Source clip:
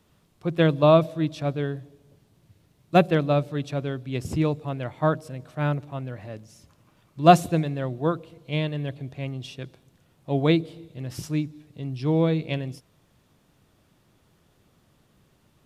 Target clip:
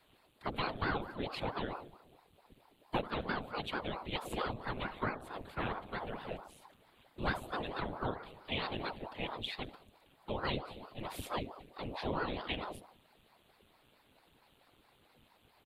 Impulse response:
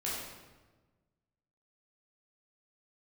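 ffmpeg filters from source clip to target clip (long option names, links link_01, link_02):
-filter_complex "[0:a]afftfilt=real='hypot(re,im)*cos(2*PI*random(0))':imag='hypot(re,im)*sin(2*PI*random(1))':win_size=512:overlap=0.75,asplit=2[link_01][link_02];[link_02]asoftclip=type=tanh:threshold=-17dB,volume=-11dB[link_03];[link_01][link_03]amix=inputs=2:normalize=0,equalizer=frequency=100:width_type=o:width=0.67:gain=-5,equalizer=frequency=250:width_type=o:width=0.67:gain=-11,equalizer=frequency=6300:width_type=o:width=0.67:gain=-10,asplit=2[link_04][link_05];[link_05]adelay=69,lowpass=frequency=1300:poles=1,volume=-14.5dB,asplit=2[link_06][link_07];[link_07]adelay=69,lowpass=frequency=1300:poles=1,volume=0.51,asplit=2[link_08][link_09];[link_09]adelay=69,lowpass=frequency=1300:poles=1,volume=0.51,asplit=2[link_10][link_11];[link_11]adelay=69,lowpass=frequency=1300:poles=1,volume=0.51,asplit=2[link_12][link_13];[link_13]adelay=69,lowpass=frequency=1300:poles=1,volume=0.51[link_14];[link_04][link_06][link_08][link_10][link_12][link_14]amix=inputs=6:normalize=0,acrossover=split=180|4000[link_15][link_16][link_17];[link_16]aexciter=amount=3:drive=6.4:freq=2700[link_18];[link_15][link_18][link_17]amix=inputs=3:normalize=0,acrossover=split=87|220[link_19][link_20][link_21];[link_19]acompressor=threshold=-48dB:ratio=4[link_22];[link_20]acompressor=threshold=-48dB:ratio=4[link_23];[link_21]acompressor=threshold=-37dB:ratio=4[link_24];[link_22][link_23][link_24]amix=inputs=3:normalize=0,aeval=exprs='val(0)*sin(2*PI*500*n/s+500*0.9/4.5*sin(2*PI*4.5*n/s))':channel_layout=same,volume=4dB"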